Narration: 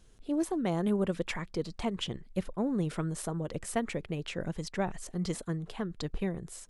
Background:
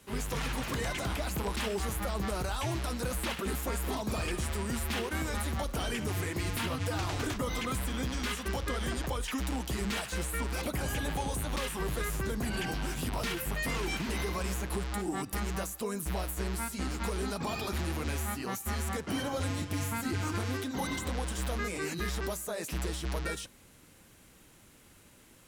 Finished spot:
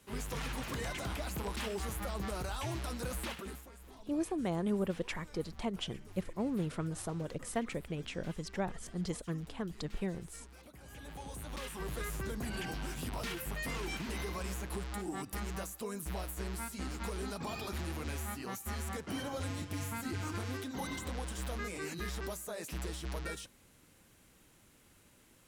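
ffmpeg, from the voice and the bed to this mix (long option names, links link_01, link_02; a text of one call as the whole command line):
ffmpeg -i stem1.wav -i stem2.wav -filter_complex "[0:a]adelay=3800,volume=-4dB[link_01];[1:a]volume=11dB,afade=type=out:start_time=3.2:duration=0.49:silence=0.149624,afade=type=in:start_time=10.81:duration=1.22:silence=0.158489[link_02];[link_01][link_02]amix=inputs=2:normalize=0" out.wav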